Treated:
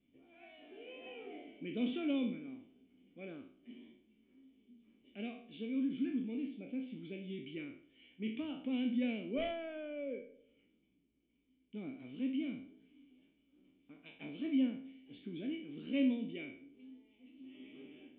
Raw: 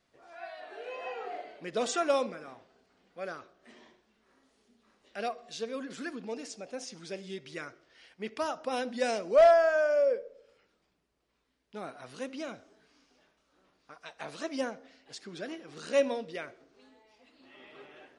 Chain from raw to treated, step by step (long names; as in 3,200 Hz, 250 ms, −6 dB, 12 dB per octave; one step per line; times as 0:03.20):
peak hold with a decay on every bin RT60 0.48 s
formant resonators in series i
dynamic equaliser 550 Hz, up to −4 dB, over −54 dBFS, Q 0.84
level +8.5 dB